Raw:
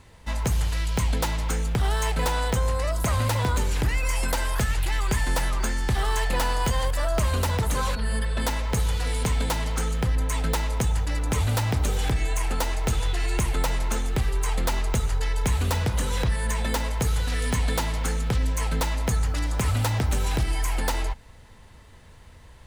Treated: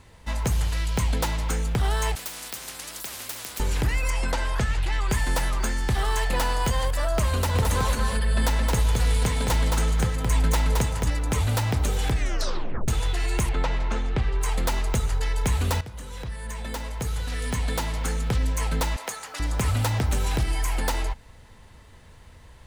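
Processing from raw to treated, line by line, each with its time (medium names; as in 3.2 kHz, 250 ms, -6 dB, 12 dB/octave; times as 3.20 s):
2.15–3.60 s: spectrum-flattening compressor 10:1
4.10–5.10 s: distance through air 61 m
7.33–11.10 s: delay 219 ms -3.5 dB
12.16 s: tape stop 0.72 s
13.49–14.41 s: low-pass 3.7 kHz
15.81–18.36 s: fade in, from -15.5 dB
18.96–19.40 s: high-pass 620 Hz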